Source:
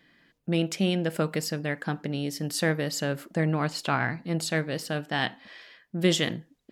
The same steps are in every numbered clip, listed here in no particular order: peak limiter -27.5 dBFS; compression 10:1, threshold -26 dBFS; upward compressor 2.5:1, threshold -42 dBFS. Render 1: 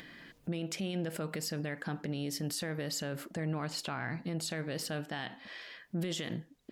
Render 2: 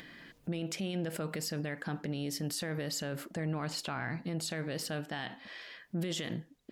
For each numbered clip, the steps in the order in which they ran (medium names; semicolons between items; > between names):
compression > upward compressor > peak limiter; upward compressor > peak limiter > compression